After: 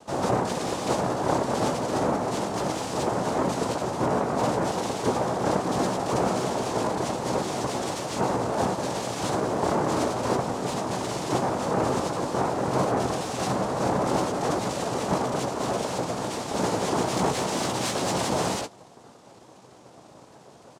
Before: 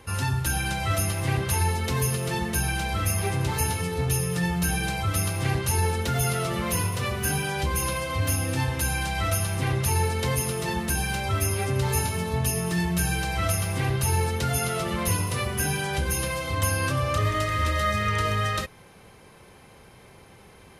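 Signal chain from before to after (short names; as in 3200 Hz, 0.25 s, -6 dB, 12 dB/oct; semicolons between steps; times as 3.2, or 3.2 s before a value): steep low-pass 4100 Hz; tilt -2.5 dB/oct; de-hum 280.2 Hz, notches 40; noise vocoder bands 2; in parallel at -3.5 dB: soft clip -25 dBFS, distortion -7 dB; on the sum: doubler 16 ms -11 dB; gain -7 dB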